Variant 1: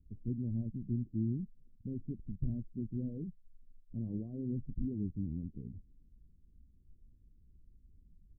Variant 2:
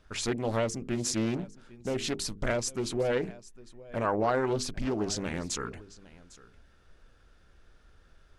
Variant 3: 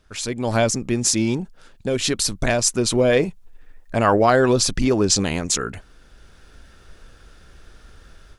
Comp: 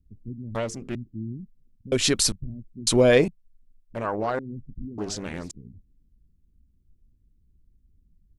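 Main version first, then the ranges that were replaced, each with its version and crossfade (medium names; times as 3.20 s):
1
0.55–0.95 s: from 2
1.92–2.32 s: from 3
2.87–3.28 s: from 3
3.95–4.39 s: from 2
4.98–5.51 s: from 2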